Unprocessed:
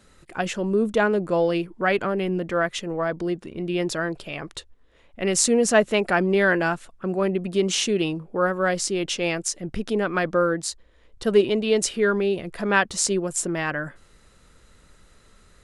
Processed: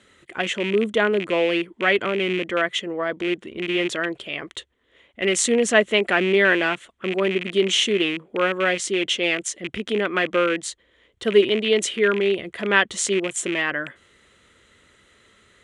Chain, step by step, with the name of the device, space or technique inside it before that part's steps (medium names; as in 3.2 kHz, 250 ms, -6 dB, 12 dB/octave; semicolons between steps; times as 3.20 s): car door speaker with a rattle (rattle on loud lows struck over -32 dBFS, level -22 dBFS; cabinet simulation 100–9500 Hz, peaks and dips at 160 Hz -9 dB, 380 Hz +3 dB, 820 Hz -4 dB, 2 kHz +8 dB, 3.2 kHz +10 dB, 5 kHz -8 dB)